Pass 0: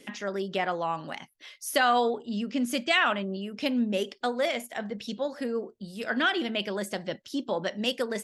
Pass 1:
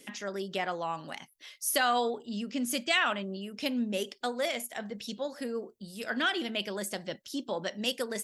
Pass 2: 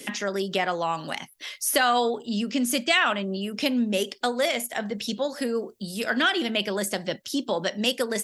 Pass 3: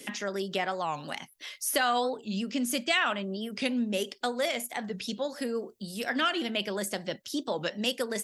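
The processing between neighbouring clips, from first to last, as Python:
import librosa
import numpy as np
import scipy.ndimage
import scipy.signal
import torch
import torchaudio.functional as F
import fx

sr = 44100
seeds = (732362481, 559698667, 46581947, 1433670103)

y1 = fx.high_shelf(x, sr, hz=5500.0, db=11.5)
y1 = y1 * 10.0 ** (-4.5 / 20.0)
y2 = fx.band_squash(y1, sr, depth_pct=40)
y2 = y2 * 10.0 ** (7.0 / 20.0)
y3 = fx.record_warp(y2, sr, rpm=45.0, depth_cents=160.0)
y3 = y3 * 10.0 ** (-5.0 / 20.0)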